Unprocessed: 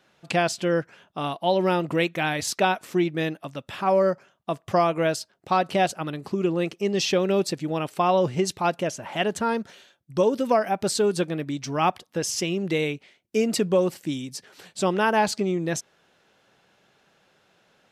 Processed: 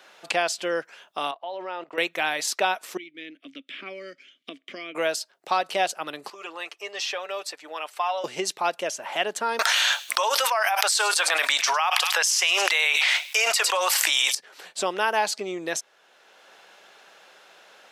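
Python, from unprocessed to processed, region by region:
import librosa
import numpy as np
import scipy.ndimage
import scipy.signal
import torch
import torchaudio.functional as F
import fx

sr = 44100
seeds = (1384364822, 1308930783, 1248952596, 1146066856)

y = fx.chain(x, sr, fx.bandpass_q(hz=940.0, q=0.58),
    fx.level_steps(step_db=17),
    fx.air_absorb(metres=51.0), at=(1.31, 1.98))
y = fx.chain(y, sr, fx.vowel_filter(vowel='i'),
    fx.band_squash(depth_pct=100), at=(2.97, 4.95))
y = fx.chain(y, sr, fx.highpass(hz=960.0, slope=12),
    fx.high_shelf(hz=2000.0, db=-9.5),
    fx.comb(ms=6.8, depth=0.52), at=(6.3, 8.24))
y = fx.chain(y, sr, fx.highpass(hz=830.0, slope=24),
    fx.echo_wet_highpass(ms=105, feedback_pct=33, hz=3100.0, wet_db=-20),
    fx.env_flatten(amount_pct=100), at=(9.59, 14.35))
y = scipy.signal.sosfilt(scipy.signal.butter(2, 530.0, 'highpass', fs=sr, output='sos'), y)
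y = fx.band_squash(y, sr, depth_pct=40)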